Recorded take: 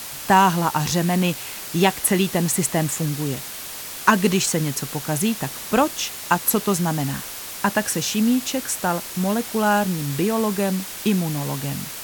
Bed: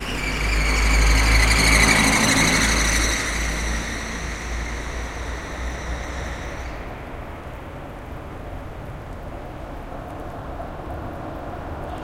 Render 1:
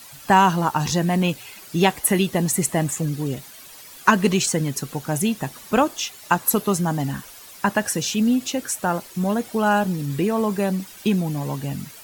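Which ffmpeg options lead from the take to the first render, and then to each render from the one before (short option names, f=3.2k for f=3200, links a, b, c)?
-af "afftdn=nr=12:nf=-34"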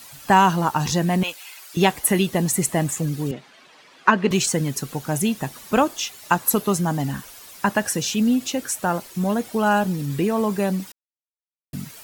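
-filter_complex "[0:a]asettb=1/sr,asplit=3[a][b][c];[a]atrim=end=1.234[d];[b]atrim=start=1.23:end=1.77,asetpts=PTS-STARTPTS,afade=t=in:d=0.004:c=qsin,afade=t=out:st=0.536:d=0.004:c=qsin,highpass=790[e];[c]atrim=start=1.766[f];[d][e]acrossfade=d=0.004:c1=hsin:c2=qsin[g];[g][f]acrossfade=d=0.004:c1=qsin:c2=hsin,asettb=1/sr,asplit=3[h][i][j];[h]atrim=end=3.314[k];[i]atrim=start=3.31:end=4.31,asetpts=PTS-STARTPTS,afade=t=in:d=0.004:c=qsin,afade=t=out:st=0.996:d=0.004:c=qsin,highpass=200,lowpass=3.1k[l];[j]atrim=start=4.306[m];[k][l]acrossfade=d=0.004:c1=hsin:c2=qsin[n];[n][m]acrossfade=d=0.004:c1=qsin:c2=hsin,asplit=3[o][p][q];[o]atrim=end=10.92,asetpts=PTS-STARTPTS,afade=t=out:st=10.916:d=0.004:c=hsin[r];[p]atrim=start=10.92:end=11.73,asetpts=PTS-STARTPTS,volume=0[s];[q]atrim=start=11.73,asetpts=PTS-STARTPTS,afade=t=in:d=0.004:c=hsin[t];[r][s][t]concat=n=3:v=0:a=1"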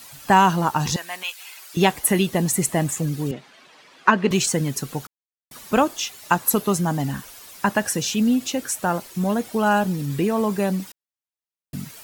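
-filter_complex "[0:a]asettb=1/sr,asplit=3[a][b][c];[a]atrim=end=0.964[d];[b]atrim=start=0.96:end=1.39,asetpts=PTS-STARTPTS,afade=t=in:d=0.004:c=qsin,afade=t=out:st=0.426:d=0.004:c=qsin,highpass=1.2k[e];[c]atrim=start=1.386[f];[d][e]acrossfade=d=0.004:c1=hsin:c2=qsin[g];[g][f]acrossfade=d=0.004:c1=qsin:c2=hsin,asplit=3[h][i][j];[h]atrim=end=5.07,asetpts=PTS-STARTPTS,afade=t=out:st=5.066:d=0.004:c=hsin[k];[i]atrim=start=5.07:end=5.51,asetpts=PTS-STARTPTS,volume=0[l];[j]atrim=start=5.51,asetpts=PTS-STARTPTS,afade=t=in:d=0.004:c=hsin[m];[k][l][m]concat=n=3:v=0:a=1"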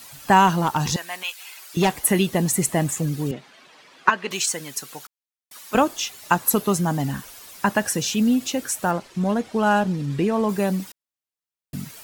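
-filter_complex "[0:a]asettb=1/sr,asplit=3[a][b][c];[a]atrim=end=0.474[d];[b]atrim=start=0.47:end=1.98,asetpts=PTS-STARTPTS,afade=t=in:d=0.004:c=qsin,afade=t=out:st=1.506:d=0.004:c=qsin,asoftclip=type=hard:threshold=-13.5dB[e];[c]atrim=start=1.976[f];[d][e]acrossfade=d=0.004:c1=hsin:c2=qsin[g];[g][f]acrossfade=d=0.004:c1=qsin:c2=hsin,asettb=1/sr,asplit=3[h][i][j];[h]atrim=end=4.094[k];[i]atrim=start=4.09:end=5.75,asetpts=PTS-STARTPTS,afade=t=in:d=0.004:c=qsin,afade=t=out:st=1.656:d=0.004:c=qsin,highpass=f=1.2k:p=1[l];[j]atrim=start=5.746[m];[k][l]acrossfade=d=0.004:c1=hsin:c2=qsin[n];[n][m]acrossfade=d=0.004:c1=qsin:c2=hsin,asettb=1/sr,asplit=3[o][p][q];[o]atrim=end=8.914[r];[p]atrim=start=8.91:end=10.49,asetpts=PTS-STARTPTS,afade=t=in:d=0.004:c=qsin,afade=t=out:st=1.576:d=0.004:c=qsin,adynamicsmooth=sensitivity=7:basefreq=5k[s];[q]atrim=start=10.486[t];[r][s]acrossfade=d=0.004:c1=hsin:c2=qsin[u];[u][t]acrossfade=d=0.004:c1=qsin:c2=hsin"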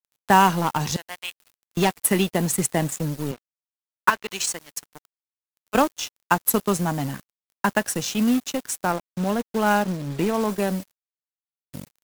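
-filter_complex "[0:a]acrossover=split=170[a][b];[b]acrusher=bits=4:mode=log:mix=0:aa=0.000001[c];[a][c]amix=inputs=2:normalize=0,aeval=exprs='sgn(val(0))*max(abs(val(0))-0.0237,0)':c=same"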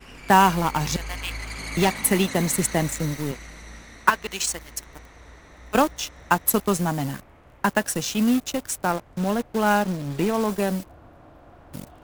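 -filter_complex "[1:a]volume=-17.5dB[a];[0:a][a]amix=inputs=2:normalize=0"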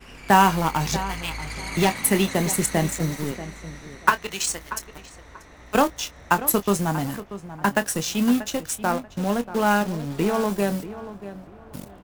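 -filter_complex "[0:a]asplit=2[a][b];[b]adelay=25,volume=-12dB[c];[a][c]amix=inputs=2:normalize=0,asplit=2[d][e];[e]adelay=636,lowpass=f=2.3k:p=1,volume=-13.5dB,asplit=2[f][g];[g]adelay=636,lowpass=f=2.3k:p=1,volume=0.25,asplit=2[h][i];[i]adelay=636,lowpass=f=2.3k:p=1,volume=0.25[j];[d][f][h][j]amix=inputs=4:normalize=0"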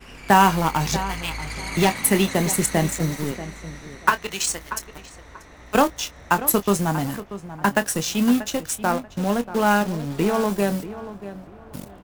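-af "volume=1.5dB,alimiter=limit=-2dB:level=0:latency=1"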